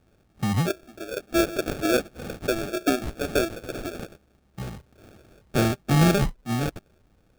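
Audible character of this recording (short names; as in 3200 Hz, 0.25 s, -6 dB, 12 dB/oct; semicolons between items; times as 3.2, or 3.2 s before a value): phasing stages 6, 2.2 Hz, lowest notch 490–1600 Hz; aliases and images of a low sample rate 1000 Hz, jitter 0%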